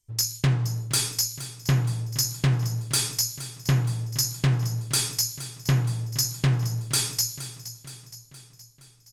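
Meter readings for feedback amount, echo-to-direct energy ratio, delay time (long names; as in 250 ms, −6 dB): 55%, −12.5 dB, 469 ms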